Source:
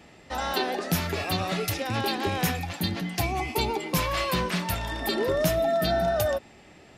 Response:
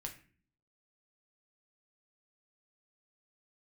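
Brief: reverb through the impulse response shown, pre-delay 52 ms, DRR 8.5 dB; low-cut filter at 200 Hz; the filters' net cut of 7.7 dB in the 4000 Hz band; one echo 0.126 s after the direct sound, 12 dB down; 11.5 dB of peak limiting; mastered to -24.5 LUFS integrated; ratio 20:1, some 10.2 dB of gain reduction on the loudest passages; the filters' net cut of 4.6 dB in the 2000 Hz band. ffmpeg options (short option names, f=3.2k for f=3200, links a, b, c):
-filter_complex "[0:a]highpass=200,equalizer=f=2k:t=o:g=-3.5,equalizer=f=4k:t=o:g=-8.5,acompressor=threshold=-32dB:ratio=20,alimiter=level_in=8dB:limit=-24dB:level=0:latency=1,volume=-8dB,aecho=1:1:126:0.251,asplit=2[a][b];[1:a]atrim=start_sample=2205,adelay=52[c];[b][c]afir=irnorm=-1:irlink=0,volume=-5.5dB[d];[a][d]amix=inputs=2:normalize=0,volume=15dB"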